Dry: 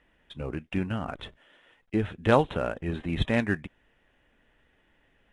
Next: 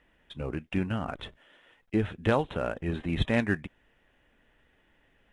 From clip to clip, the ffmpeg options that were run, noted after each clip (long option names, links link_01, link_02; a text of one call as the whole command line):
ffmpeg -i in.wav -af "alimiter=limit=-13dB:level=0:latency=1:release=418" out.wav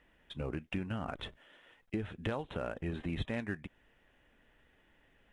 ffmpeg -i in.wav -af "acompressor=threshold=-32dB:ratio=5,volume=-1.5dB" out.wav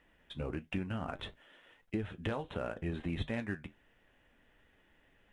ffmpeg -i in.wav -af "flanger=delay=9.2:depth=3.2:regen=-64:speed=1.5:shape=triangular,volume=4dB" out.wav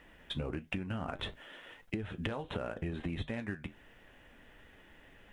ffmpeg -i in.wav -af "acompressor=threshold=-43dB:ratio=12,volume=9.5dB" out.wav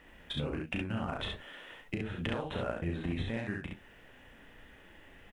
ffmpeg -i in.wav -af "aecho=1:1:34.99|67.06:0.562|0.708" out.wav